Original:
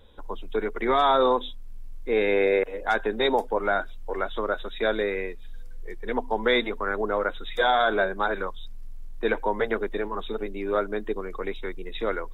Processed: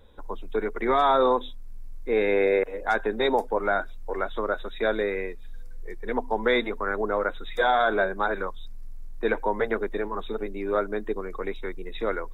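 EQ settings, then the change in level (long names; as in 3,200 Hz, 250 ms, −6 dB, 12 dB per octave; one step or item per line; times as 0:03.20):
parametric band 3,100 Hz −7.5 dB 0.45 octaves
0.0 dB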